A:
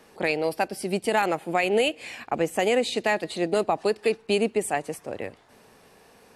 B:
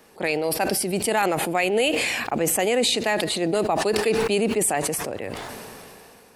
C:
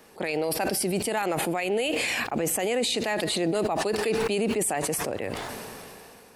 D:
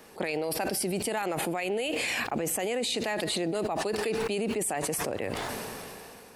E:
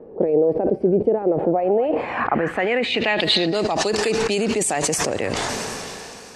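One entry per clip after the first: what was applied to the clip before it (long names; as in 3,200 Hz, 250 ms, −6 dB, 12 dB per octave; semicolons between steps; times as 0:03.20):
high-shelf EQ 11,000 Hz +10 dB; level that may fall only so fast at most 21 dB per second
brickwall limiter −17.5 dBFS, peak gain reduction 10.5 dB
downward compressor, threshold −28 dBFS, peak gain reduction 6.5 dB; level +1.5 dB
echo through a band-pass that steps 253 ms, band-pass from 1,500 Hz, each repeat 1.4 octaves, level −11 dB; low-pass filter sweep 470 Hz → 6,700 Hz, 0:01.33–0:03.88; level +8.5 dB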